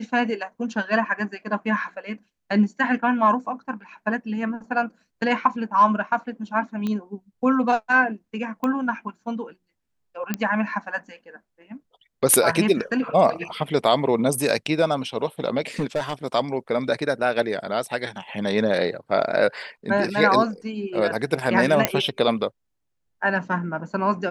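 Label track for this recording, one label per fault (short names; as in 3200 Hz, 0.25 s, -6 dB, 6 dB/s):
6.870000	6.870000	pop -16 dBFS
8.640000	8.640000	pop -14 dBFS
10.340000	10.340000	pop -9 dBFS
15.790000	16.130000	clipped -18.5 dBFS
21.850000	21.850000	pop -1 dBFS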